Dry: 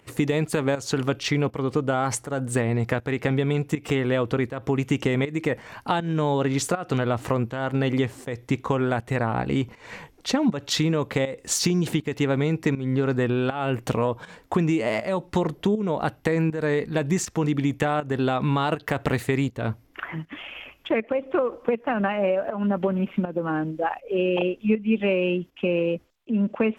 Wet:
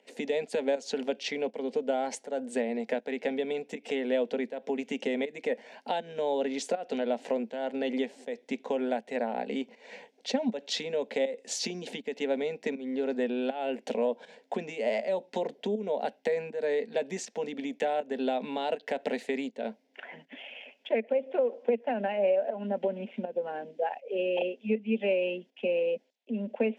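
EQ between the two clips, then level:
elliptic high-pass filter 240 Hz, stop band 60 dB
high-frequency loss of the air 93 metres
phaser with its sweep stopped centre 320 Hz, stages 6
−1.5 dB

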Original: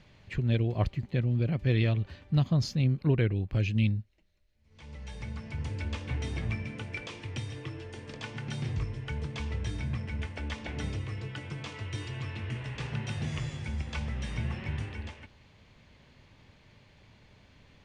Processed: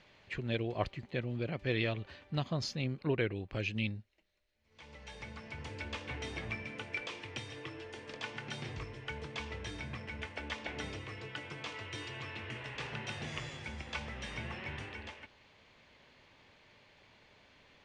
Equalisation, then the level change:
high-frequency loss of the air 60 metres
bass and treble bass −13 dB, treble −6 dB
high-shelf EQ 4,800 Hz +10.5 dB
0.0 dB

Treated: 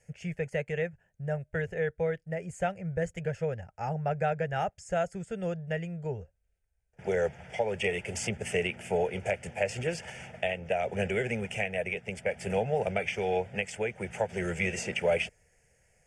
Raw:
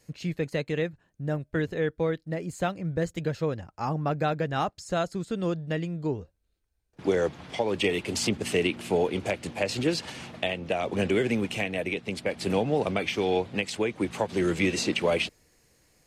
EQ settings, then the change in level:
low-pass filter 9,700 Hz 24 dB per octave
phaser with its sweep stopped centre 1,100 Hz, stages 6
0.0 dB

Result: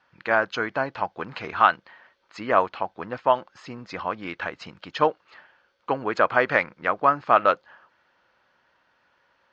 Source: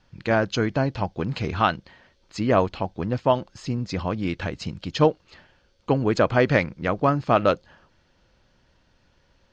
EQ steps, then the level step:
resonant band-pass 1,300 Hz, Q 1.2
+5.5 dB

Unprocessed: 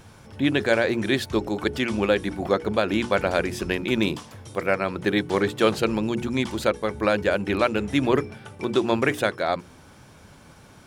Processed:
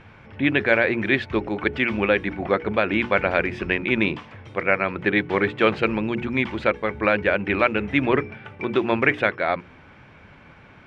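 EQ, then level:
low-pass with resonance 2,300 Hz, resonance Q 2.4
0.0 dB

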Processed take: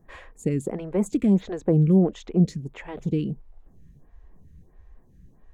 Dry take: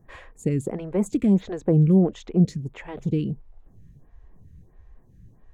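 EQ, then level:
parametric band 110 Hz −9 dB 0.43 octaves
0.0 dB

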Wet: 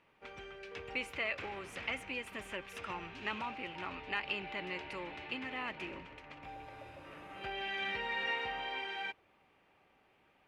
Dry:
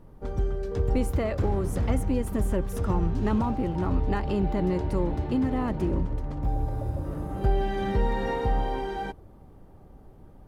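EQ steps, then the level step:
resonant band-pass 2,500 Hz, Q 4.3
+11.5 dB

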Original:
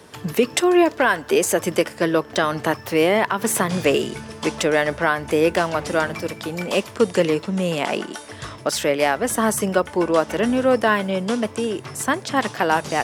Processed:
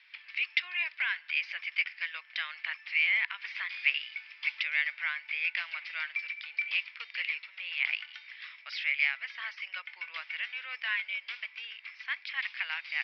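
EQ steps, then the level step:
four-pole ladder high-pass 2,100 Hz, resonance 75%
Butterworth low-pass 5,200 Hz 96 dB per octave
high-shelf EQ 4,000 Hz −8 dB
+2.5 dB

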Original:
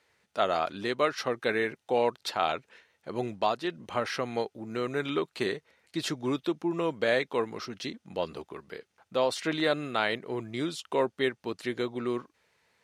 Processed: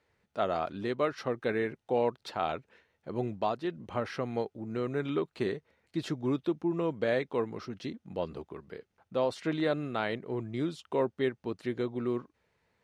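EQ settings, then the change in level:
spectral tilt −2.5 dB per octave
−4.5 dB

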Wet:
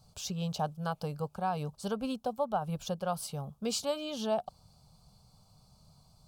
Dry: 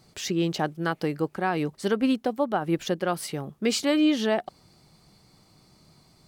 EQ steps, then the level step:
low-shelf EQ 130 Hz +8.5 dB
phaser with its sweep stopped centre 800 Hz, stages 4
−4.0 dB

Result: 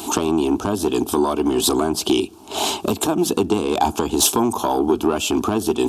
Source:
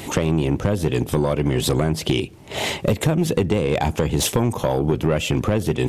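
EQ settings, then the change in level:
high-pass filter 260 Hz 6 dB per octave
phaser with its sweep stopped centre 530 Hz, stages 6
+7.5 dB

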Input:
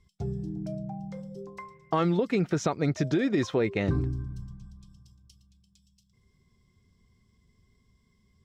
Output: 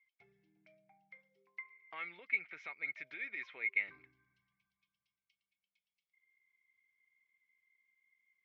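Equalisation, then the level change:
resonant band-pass 2,200 Hz, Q 17
high-frequency loss of the air 230 metres
spectral tilt +2 dB per octave
+9.0 dB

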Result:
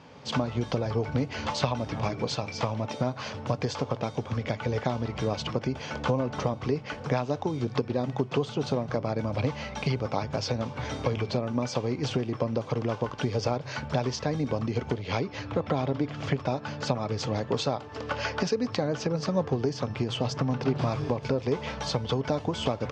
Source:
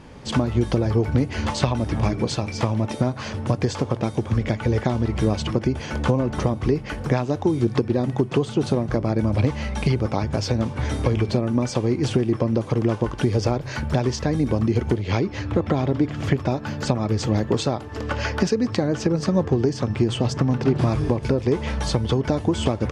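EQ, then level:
loudspeaker in its box 150–6,300 Hz, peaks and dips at 210 Hz −7 dB, 340 Hz −10 dB, 1,800 Hz −4 dB
−2.5 dB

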